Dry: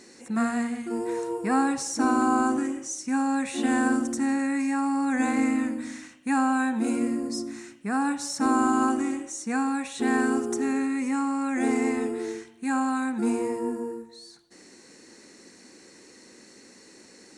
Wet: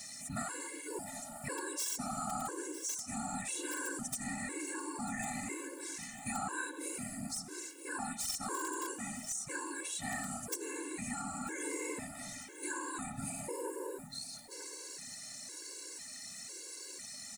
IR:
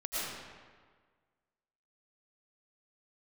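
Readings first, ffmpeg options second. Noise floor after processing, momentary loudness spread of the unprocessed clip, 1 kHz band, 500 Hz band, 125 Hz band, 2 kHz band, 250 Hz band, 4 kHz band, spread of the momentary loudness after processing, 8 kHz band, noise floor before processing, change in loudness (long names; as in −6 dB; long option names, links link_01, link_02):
−49 dBFS, 9 LU, −14.0 dB, −13.5 dB, can't be measured, −10.0 dB, −19.5 dB, −3.5 dB, 7 LU, −1.0 dB, −52 dBFS, −13.5 dB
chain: -af "aemphasis=mode=production:type=riaa,aeval=exprs='(mod(4.73*val(0)+1,2)-1)/4.73':channel_layout=same,bandreject=frequency=117.1:width_type=h:width=4,bandreject=frequency=234.2:width_type=h:width=4,bandreject=frequency=351.3:width_type=h:width=4,afftfilt=real='hypot(re,im)*cos(2*PI*random(0))':imag='hypot(re,im)*sin(2*PI*random(1))':win_size=512:overlap=0.75,areverse,acompressor=mode=upward:threshold=-46dB:ratio=2.5,areverse,lowshelf=frequency=77:gain=8.5,aecho=1:1:945|1890|2835:0.0891|0.0321|0.0116,acompressor=threshold=-45dB:ratio=2.5,afftfilt=real='re*gt(sin(2*PI*1*pts/sr)*(1-2*mod(floor(b*sr/1024/290),2)),0)':imag='im*gt(sin(2*PI*1*pts/sr)*(1-2*mod(floor(b*sr/1024/290),2)),0)':win_size=1024:overlap=0.75,volume=6.5dB"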